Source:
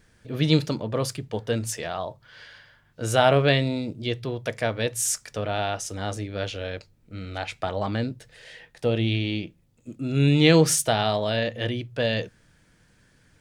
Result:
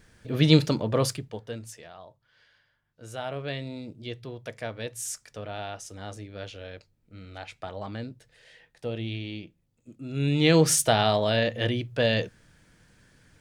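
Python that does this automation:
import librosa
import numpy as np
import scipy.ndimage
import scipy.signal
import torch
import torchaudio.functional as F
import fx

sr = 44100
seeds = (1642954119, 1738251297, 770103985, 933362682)

y = fx.gain(x, sr, db=fx.line((1.08, 2.0), (1.39, -9.0), (1.93, -16.0), (3.3, -16.0), (3.85, -9.0), (10.04, -9.0), (10.83, 1.0)))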